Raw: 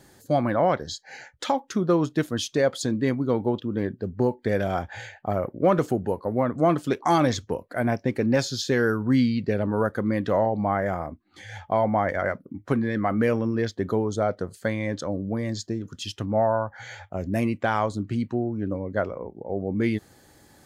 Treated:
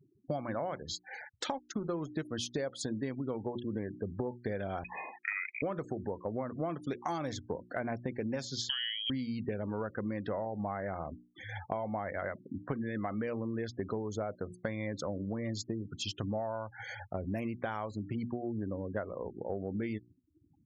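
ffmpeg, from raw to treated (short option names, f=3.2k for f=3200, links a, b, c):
-filter_complex "[0:a]asettb=1/sr,asplit=3[a][b][c];[a]atrim=end=1.444[d];[b]atrim=start=1.44:end=2.08,asetpts=PTS-STARTPTS,afade=t=in:d=0.004:c=qsin,afade=t=out:st=0.636:d=0.004:c=qsin,aeval=exprs='sgn(val(0))*max(abs(val(0))-0.00891,0)':c=same[e];[c]atrim=start=2.076[f];[d][e]acrossfade=d=0.004:c1=hsin:c2=qsin[g];[g][f]acrossfade=d=0.004:c1=qsin:c2=hsin,asettb=1/sr,asplit=3[h][i][j];[h]atrim=end=4.844[k];[i]atrim=start=4.84:end=5.62,asetpts=PTS-STARTPTS,afade=t=in:d=0.004:c=qsin,afade=t=out:st=0.776:d=0.004:c=qsin,lowpass=f=2.2k:t=q:w=0.5098,lowpass=f=2.2k:t=q:w=0.6013,lowpass=f=2.2k:t=q:w=0.9,lowpass=f=2.2k:t=q:w=2.563,afreqshift=-2600[l];[j]atrim=start=5.616[m];[k][l]acrossfade=d=0.004:c1=hsin:c2=qsin[n];[n][m]acrossfade=d=0.004:c1=qsin:c2=hsin,asettb=1/sr,asplit=3[o][p][q];[o]atrim=end=8.694[r];[p]atrim=start=8.69:end=9.1,asetpts=PTS-STARTPTS,afade=t=in:d=0.004:c=qsin,afade=t=out:st=0.406:d=0.004:c=qsin,lowpass=f=2.9k:t=q:w=0.5098,lowpass=f=2.9k:t=q:w=0.6013,lowpass=f=2.9k:t=q:w=0.9,lowpass=f=2.9k:t=q:w=2.563,afreqshift=-3400[s];[q]atrim=start=9.096[t];[r][s]acrossfade=d=0.004:c1=hsin:c2=qsin[u];[u][t]acrossfade=d=0.004:c1=qsin:c2=hsin,afftfilt=real='re*gte(hypot(re,im),0.0112)':imag='im*gte(hypot(re,im),0.0112)':win_size=1024:overlap=0.75,bandreject=f=60:t=h:w=6,bandreject=f=120:t=h:w=6,bandreject=f=180:t=h:w=6,bandreject=f=240:t=h:w=6,bandreject=f=300:t=h:w=6,bandreject=f=360:t=h:w=6,acompressor=threshold=-30dB:ratio=12,volume=-2dB"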